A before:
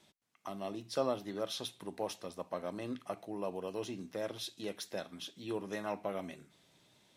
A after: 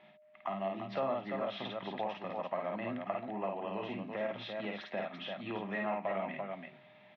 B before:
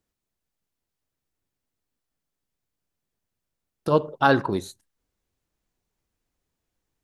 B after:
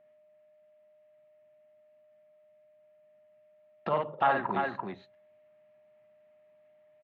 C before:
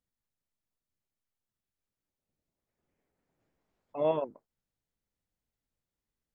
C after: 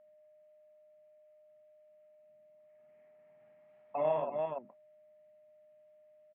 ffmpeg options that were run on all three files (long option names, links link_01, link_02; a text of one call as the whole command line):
ffmpeg -i in.wav -filter_complex "[0:a]bandreject=frequency=1500:width=6.1,acrossover=split=300|1100[link_01][link_02][link_03];[link_01]asoftclip=type=hard:threshold=-33.5dB[link_04];[link_04][link_02][link_03]amix=inputs=3:normalize=0,acontrast=57,highpass=frequency=120:width=0.5412,highpass=frequency=120:width=1.3066,equalizer=frequency=120:width_type=q:width=4:gain=3,equalizer=frequency=210:width_type=q:width=4:gain=6,equalizer=frequency=310:width_type=q:width=4:gain=-6,equalizer=frequency=460:width_type=q:width=4:gain=-7,equalizer=frequency=700:width_type=q:width=4:gain=5,equalizer=frequency=1100:width_type=q:width=4:gain=-4,lowpass=frequency=2700:width=0.5412,lowpass=frequency=2700:width=1.3066,asplit=2[link_05][link_06];[link_06]aecho=0:1:52|340:0.708|0.447[link_07];[link_05][link_07]amix=inputs=2:normalize=0,acompressor=threshold=-35dB:ratio=2,aeval=exprs='val(0)+0.00112*sin(2*PI*610*n/s)':channel_layout=same,equalizer=frequency=1700:width_type=o:width=2.4:gain=10.5,volume=-5dB" out.wav